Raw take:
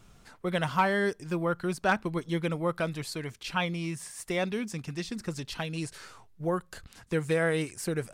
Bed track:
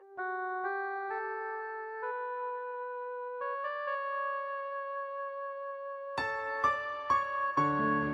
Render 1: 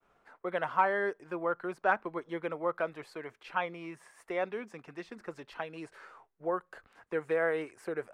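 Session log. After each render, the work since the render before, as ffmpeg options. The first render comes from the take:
ffmpeg -i in.wav -filter_complex "[0:a]agate=range=-33dB:threshold=-52dB:ratio=3:detection=peak,acrossover=split=350 2100:gain=0.0891 1 0.0891[link_01][link_02][link_03];[link_01][link_02][link_03]amix=inputs=3:normalize=0" out.wav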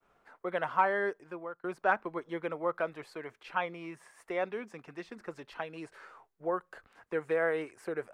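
ffmpeg -i in.wav -filter_complex "[0:a]asplit=2[link_01][link_02];[link_01]atrim=end=1.64,asetpts=PTS-STARTPTS,afade=type=out:start_time=1.08:duration=0.56:silence=0.0749894[link_03];[link_02]atrim=start=1.64,asetpts=PTS-STARTPTS,afade=type=in:duration=0.004:curve=hsin:silence=0.0749894[link_04];[link_03][link_04]concat=n=2:v=0:a=1" out.wav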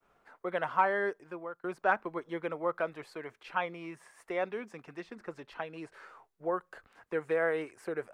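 ffmpeg -i in.wav -filter_complex "[0:a]asettb=1/sr,asplit=3[link_01][link_02][link_03];[link_01]atrim=end=5.004[link_04];[link_02]atrim=start=5:end=5.97,asetpts=PTS-STARTPTS,afade=type=in:duration=0.004:curve=qsin,afade=type=out:start_time=0.966:duration=0.004:curve=qsin,highshelf=frequency=4400:gain=-4.5[link_05];[link_03]atrim=start=5.966[link_06];[link_04][link_05]acrossfade=duration=0.004:curve1=hsin:curve2=qsin[link_07];[link_07][link_06]acrossfade=duration=0.004:curve1=qsin:curve2=hsin" out.wav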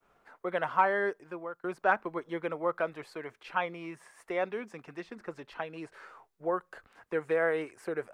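ffmpeg -i in.wav -af "volume=1.5dB" out.wav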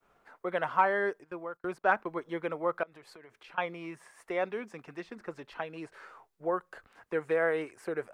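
ffmpeg -i in.wav -filter_complex "[0:a]asplit=3[link_01][link_02][link_03];[link_01]afade=type=out:start_time=1.23:duration=0.02[link_04];[link_02]agate=range=-12dB:threshold=-53dB:ratio=16:release=100:detection=peak,afade=type=in:start_time=1.23:duration=0.02,afade=type=out:start_time=2.22:duration=0.02[link_05];[link_03]afade=type=in:start_time=2.22:duration=0.02[link_06];[link_04][link_05][link_06]amix=inputs=3:normalize=0,asettb=1/sr,asplit=3[link_07][link_08][link_09];[link_07]atrim=end=2.834[link_10];[link_08]atrim=start=2.83:end=3.58,asetpts=PTS-STARTPTS,afade=type=in:duration=0.004:curve=qsin,afade=type=out:start_time=0.746:duration=0.004:curve=qsin,acompressor=threshold=-48dB:ratio=12:attack=3.2:release=140:knee=1:detection=peak[link_11];[link_09]atrim=start=3.576[link_12];[link_10][link_11]acrossfade=duration=0.004:curve1=hsin:curve2=qsin[link_13];[link_13][link_12]acrossfade=duration=0.004:curve1=qsin:curve2=hsin" out.wav

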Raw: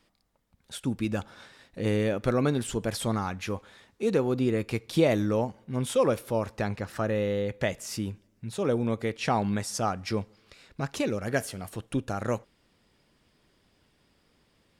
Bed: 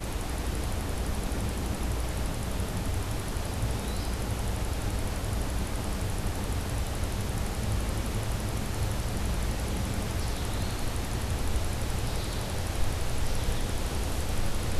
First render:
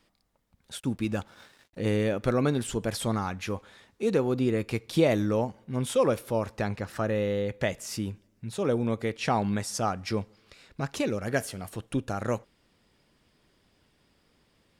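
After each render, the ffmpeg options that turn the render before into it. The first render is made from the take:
ffmpeg -i in.wav -filter_complex "[0:a]asettb=1/sr,asplit=3[link_01][link_02][link_03];[link_01]atrim=end=0.804[link_04];[link_02]atrim=start=0.8:end=1.79,asetpts=PTS-STARTPTS,afade=type=in:duration=0.004:curve=qsin,afade=type=out:start_time=0.986:duration=0.004:curve=qsin,aeval=exprs='sgn(val(0))*max(abs(val(0))-0.00126,0)':channel_layout=same[link_05];[link_03]atrim=start=1.786[link_06];[link_04][link_05]acrossfade=duration=0.004:curve1=hsin:curve2=qsin[link_07];[link_07][link_06]acrossfade=duration=0.004:curve1=qsin:curve2=hsin" out.wav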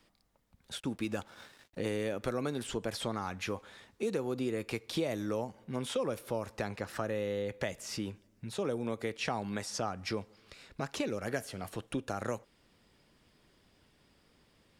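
ffmpeg -i in.wav -filter_complex "[0:a]acrossover=split=270|5900[link_01][link_02][link_03];[link_01]acompressor=threshold=-43dB:ratio=4[link_04];[link_02]acompressor=threshold=-33dB:ratio=4[link_05];[link_03]acompressor=threshold=-51dB:ratio=4[link_06];[link_04][link_05][link_06]amix=inputs=3:normalize=0" out.wav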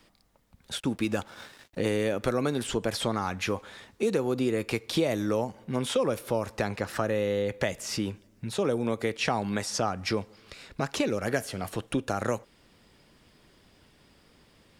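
ffmpeg -i in.wav -af "volume=7dB" out.wav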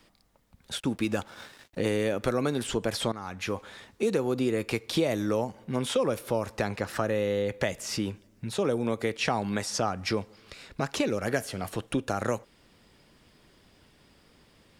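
ffmpeg -i in.wav -filter_complex "[0:a]asplit=2[link_01][link_02];[link_01]atrim=end=3.12,asetpts=PTS-STARTPTS,afade=type=out:start_time=3.116:duration=0.004:curve=hsin:silence=0.237137[link_03];[link_02]atrim=start=3.12,asetpts=PTS-STARTPTS,afade=type=in:duration=0.53:silence=0.237137[link_04];[link_03][link_04]concat=n=2:v=0:a=1" out.wav

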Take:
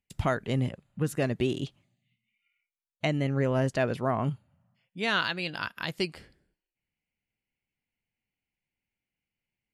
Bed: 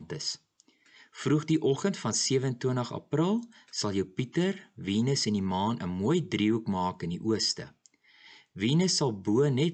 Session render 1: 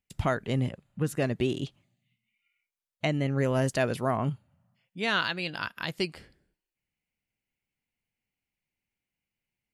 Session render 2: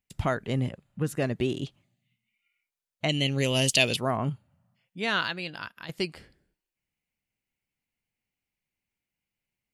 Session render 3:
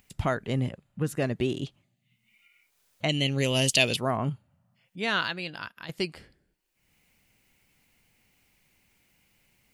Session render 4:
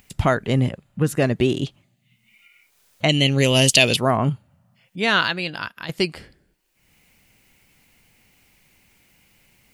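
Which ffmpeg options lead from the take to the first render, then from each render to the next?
ffmpeg -i in.wav -filter_complex "[0:a]asettb=1/sr,asplit=3[link_01][link_02][link_03];[link_01]atrim=end=3.384[link_04];[link_02]atrim=start=3.38:end=4.17,asetpts=PTS-STARTPTS,afade=type=in:duration=0.004:curve=qsin,afade=type=out:start_time=0.786:duration=0.004:curve=qsin,aemphasis=mode=production:type=50kf[link_05];[link_03]atrim=start=4.166[link_06];[link_04][link_05]acrossfade=duration=0.004:curve1=hsin:curve2=qsin[link_07];[link_07][link_06]acrossfade=duration=0.004:curve1=qsin:curve2=hsin" out.wav
ffmpeg -i in.wav -filter_complex "[0:a]asplit=3[link_01][link_02][link_03];[link_01]afade=type=out:start_time=3.08:duration=0.02[link_04];[link_02]highshelf=frequency=2100:width_type=q:width=3:gain=12,afade=type=in:start_time=3.08:duration=0.02,afade=type=out:start_time=3.95:duration=0.02[link_05];[link_03]afade=type=in:start_time=3.95:duration=0.02[link_06];[link_04][link_05][link_06]amix=inputs=3:normalize=0,asplit=2[link_07][link_08];[link_07]atrim=end=5.89,asetpts=PTS-STARTPTS,afade=type=out:start_time=5.2:duration=0.69:silence=0.334965[link_09];[link_08]atrim=start=5.89,asetpts=PTS-STARTPTS,afade=type=in:duration=0.004:curve=hsin:silence=0.334965[link_10];[link_09][link_10]concat=n=2:v=0:a=1" out.wav
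ffmpeg -i in.wav -af "acompressor=mode=upward:threshold=-49dB:ratio=2.5" out.wav
ffmpeg -i in.wav -af "volume=8.5dB,alimiter=limit=-1dB:level=0:latency=1" out.wav

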